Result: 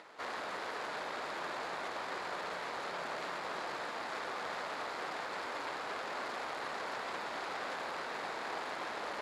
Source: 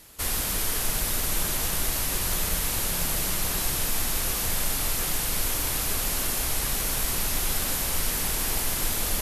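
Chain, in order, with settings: median filter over 15 samples; upward compressor, threshold -41 dBFS; BPF 560–4100 Hz

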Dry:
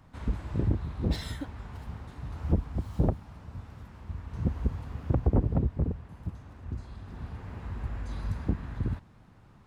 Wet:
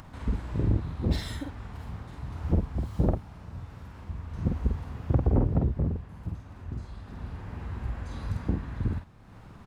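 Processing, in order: doubler 48 ms -3.5 dB; upward compressor, threshold -39 dBFS

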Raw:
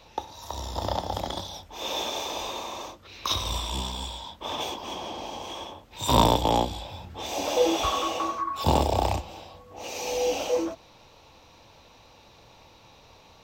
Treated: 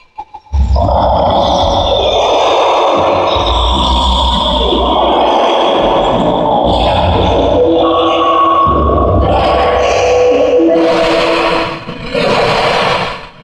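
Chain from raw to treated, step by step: zero-crossing step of -28.5 dBFS; reverse; compressor 12:1, threshold -30 dBFS, peak gain reduction 17.5 dB; reverse; rotary speaker horn 0.7 Hz; spectral noise reduction 21 dB; speakerphone echo 0.28 s, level -8 dB; plate-style reverb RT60 4.5 s, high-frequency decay 0.55×, DRR 4 dB; gate -41 dBFS, range -19 dB; on a send: echo 0.156 s -4.5 dB; on the sum: dynamic EQ 600 Hz, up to +8 dB, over -48 dBFS, Q 0.82; LPF 4100 Hz 12 dB/oct; maximiser +28 dB; Doppler distortion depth 0.16 ms; gain -1 dB

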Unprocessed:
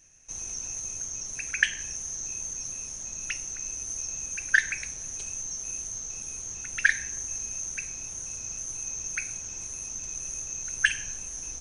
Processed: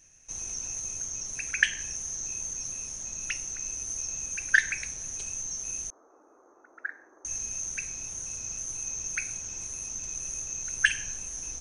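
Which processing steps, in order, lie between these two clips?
5.9–7.25 elliptic band-pass 310–1300 Hz, stop band 40 dB

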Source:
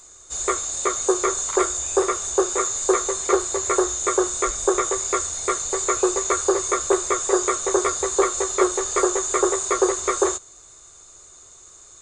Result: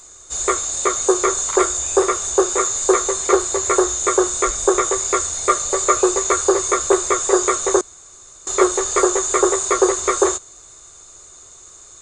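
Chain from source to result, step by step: 5.48–6.03 small resonant body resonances 580/1200 Hz, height 8 dB; 7.81–8.47 room tone; gain +4 dB

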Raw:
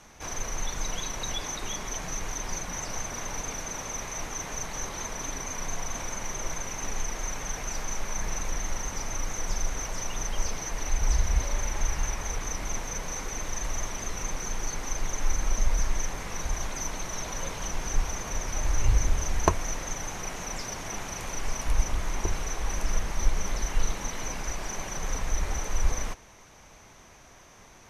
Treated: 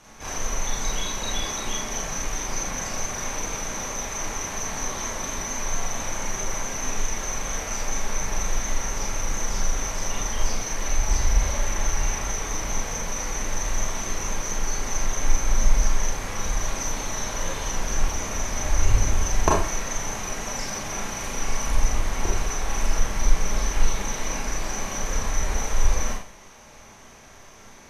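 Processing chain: Schroeder reverb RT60 0.44 s, combs from 28 ms, DRR -3.5 dB

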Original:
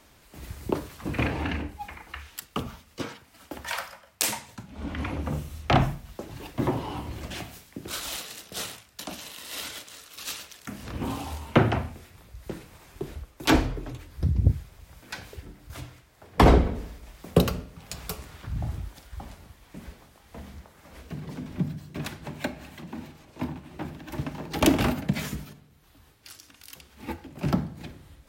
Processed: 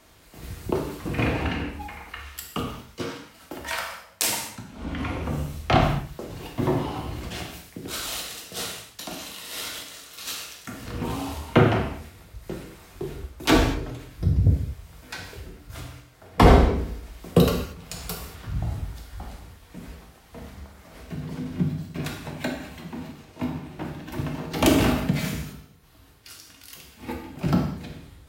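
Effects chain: non-linear reverb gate 0.26 s falling, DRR 0.5 dB

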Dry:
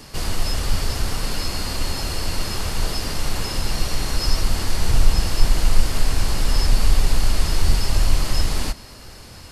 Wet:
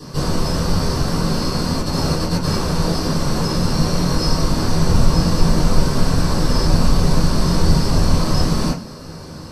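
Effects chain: 1.81–2.57 negative-ratio compressor -22 dBFS, ratio -0.5; reverb RT60 0.30 s, pre-delay 3 ms, DRR -9.5 dB; gain -8 dB

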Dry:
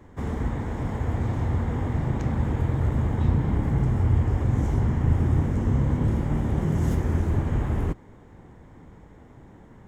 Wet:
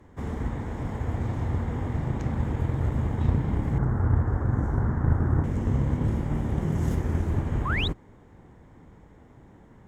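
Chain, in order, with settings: 7.65–7.88 painted sound rise 970–4100 Hz -27 dBFS; added harmonics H 3 -20 dB, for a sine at -10 dBFS; 3.78–5.44 resonant high shelf 2000 Hz -9.5 dB, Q 3

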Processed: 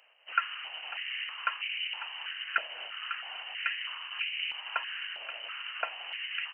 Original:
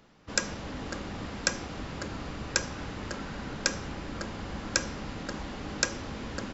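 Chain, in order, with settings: trilling pitch shifter -3.5 st, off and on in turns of 0.137 s; inverted band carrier 3000 Hz; stepped high-pass 3.1 Hz 620–2300 Hz; gain -5 dB

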